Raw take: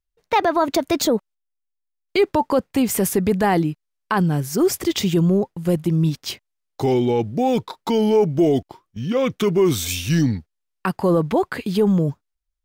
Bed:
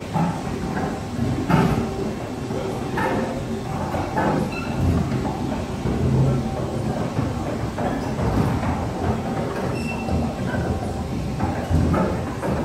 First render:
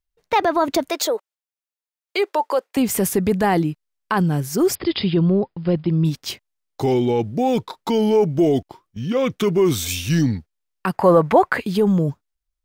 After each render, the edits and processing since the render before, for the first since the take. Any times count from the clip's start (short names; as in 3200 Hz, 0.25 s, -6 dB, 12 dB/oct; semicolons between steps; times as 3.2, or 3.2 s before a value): 0.9–2.77 HPF 420 Hz 24 dB/oct; 4.75–6.05 brick-wall FIR low-pass 5200 Hz; 10.94–11.6 band shelf 1100 Hz +8.5 dB 2.5 oct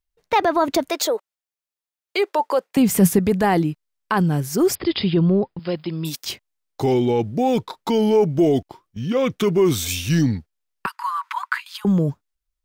2.39–3.19 bell 170 Hz +12 dB 0.59 oct; 5.59–6.25 RIAA curve recording; 10.86–11.85 rippled Chebyshev high-pass 940 Hz, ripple 3 dB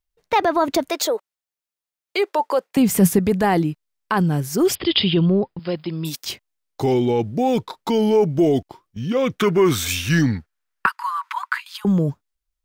4.65–5.26 bell 3100 Hz +11.5 dB 0.62 oct; 9.39–10.93 bell 1500 Hz +10.5 dB 1.2 oct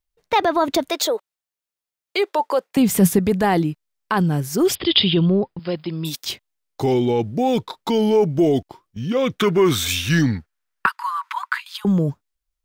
dynamic EQ 3600 Hz, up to +5 dB, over -44 dBFS, Q 4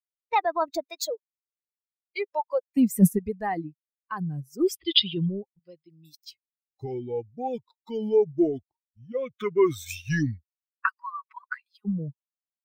per-bin expansion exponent 2; upward expander 1.5:1, over -39 dBFS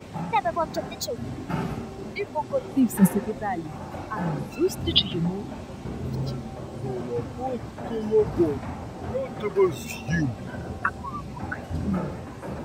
add bed -11 dB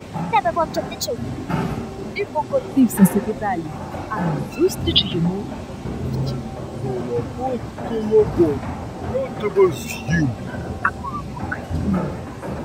gain +6 dB; limiter -2 dBFS, peak gain reduction 3 dB